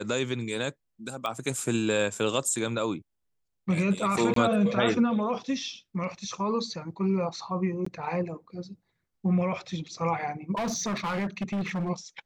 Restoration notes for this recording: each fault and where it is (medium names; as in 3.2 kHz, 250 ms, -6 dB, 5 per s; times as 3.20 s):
1.26 s: pop -18 dBFS
4.34–4.36 s: dropout 23 ms
7.85–7.86 s: dropout 14 ms
10.55–11.90 s: clipped -26.5 dBFS